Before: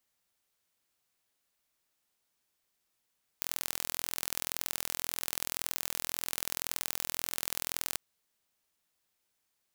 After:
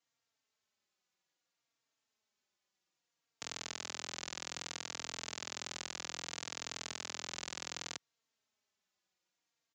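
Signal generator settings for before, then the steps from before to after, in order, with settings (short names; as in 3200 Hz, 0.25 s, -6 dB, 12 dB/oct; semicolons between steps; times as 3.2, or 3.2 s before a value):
pulse train 41.9/s, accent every 2, -4.5 dBFS 4.54 s
HPF 110 Hz 12 dB/oct; downsampling 16000 Hz; endless flanger 3.8 ms -0.63 Hz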